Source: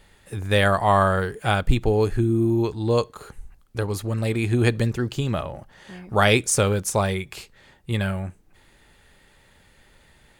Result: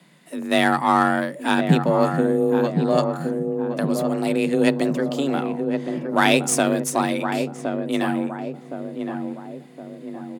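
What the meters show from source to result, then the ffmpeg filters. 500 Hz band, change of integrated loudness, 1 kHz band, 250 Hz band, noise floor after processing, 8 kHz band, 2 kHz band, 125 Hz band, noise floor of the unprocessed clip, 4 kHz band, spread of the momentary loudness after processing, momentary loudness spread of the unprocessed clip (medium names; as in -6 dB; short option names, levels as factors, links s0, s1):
+2.0 dB, +1.0 dB, +3.0 dB, +5.5 dB, -43 dBFS, 0.0 dB, +1.5 dB, -5.0 dB, -57 dBFS, +0.5 dB, 15 LU, 16 LU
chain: -filter_complex "[0:a]aeval=exprs='0.668*(cos(1*acos(clip(val(0)/0.668,-1,1)))-cos(1*PI/2))+0.0266*(cos(8*acos(clip(val(0)/0.668,-1,1)))-cos(8*PI/2))':c=same,asplit=2[s0][s1];[s1]adelay=1066,lowpass=f=920:p=1,volume=0.562,asplit=2[s2][s3];[s3]adelay=1066,lowpass=f=920:p=1,volume=0.53,asplit=2[s4][s5];[s5]adelay=1066,lowpass=f=920:p=1,volume=0.53,asplit=2[s6][s7];[s7]adelay=1066,lowpass=f=920:p=1,volume=0.53,asplit=2[s8][s9];[s9]adelay=1066,lowpass=f=920:p=1,volume=0.53,asplit=2[s10][s11];[s11]adelay=1066,lowpass=f=920:p=1,volume=0.53,asplit=2[s12][s13];[s13]adelay=1066,lowpass=f=920:p=1,volume=0.53[s14];[s0][s2][s4][s6][s8][s10][s12][s14]amix=inputs=8:normalize=0,afreqshift=140"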